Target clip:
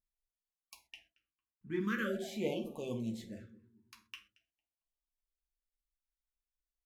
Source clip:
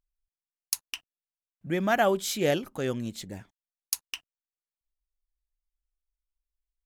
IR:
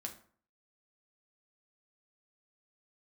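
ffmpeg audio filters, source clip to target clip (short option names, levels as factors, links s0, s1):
-filter_complex "[0:a]asplit=3[s0][s1][s2];[s0]afade=t=out:st=0.83:d=0.02[s3];[s1]aemphasis=mode=reproduction:type=75kf,afade=t=in:st=0.83:d=0.02,afade=t=out:st=1.79:d=0.02[s4];[s2]afade=t=in:st=1.79:d=0.02[s5];[s3][s4][s5]amix=inputs=3:normalize=0,asplit=2[s6][s7];[s7]adelay=226,lowpass=f=810:p=1,volume=0.158,asplit=2[s8][s9];[s9]adelay=226,lowpass=f=810:p=1,volume=0.42,asplit=2[s10][s11];[s11]adelay=226,lowpass=f=810:p=1,volume=0.42,asplit=2[s12][s13];[s13]adelay=226,lowpass=f=810:p=1,volume=0.42[s14];[s6][s8][s10][s12][s14]amix=inputs=5:normalize=0,acrossover=split=3100[s15][s16];[s16]acompressor=threshold=0.00708:ratio=4:attack=1:release=60[s17];[s15][s17]amix=inputs=2:normalize=0,asettb=1/sr,asplit=3[s18][s19][s20];[s18]atrim=end=3.254[s21];[s19]atrim=start=3.25:end=4.07,asetpts=PTS-STARTPTS,afade=t=in:d=0.004:c=qsin,afade=t=out:st=0.816:d=0.004:c=qsin,highshelf=f=8300:g=-11[s22];[s20]atrim=start=4.066[s23];[s21][s22]acrossfade=d=0.004:c1=hsin:c2=qsin[s24];[s24][s23]acrossfade=d=0.004:c1=qsin:c2=hsin[s25];[1:a]atrim=start_sample=2205,atrim=end_sample=6174[s26];[s25][s26]afir=irnorm=-1:irlink=0,afftfilt=real='re*(1-between(b*sr/1024,610*pow(1700/610,0.5+0.5*sin(2*PI*0.45*pts/sr))/1.41,610*pow(1700/610,0.5+0.5*sin(2*PI*0.45*pts/sr))*1.41))':imag='im*(1-between(b*sr/1024,610*pow(1700/610,0.5+0.5*sin(2*PI*0.45*pts/sr))/1.41,610*pow(1700/610,0.5+0.5*sin(2*PI*0.45*pts/sr))*1.41))':win_size=1024:overlap=0.75,volume=0.501"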